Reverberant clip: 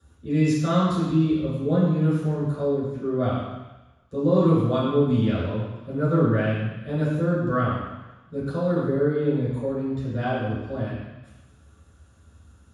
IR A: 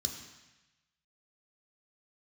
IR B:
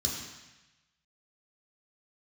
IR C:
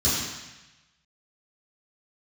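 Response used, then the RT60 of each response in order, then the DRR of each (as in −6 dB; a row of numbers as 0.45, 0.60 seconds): C; 1.0, 1.0, 1.0 seconds; 2.5, −3.0, −12.5 decibels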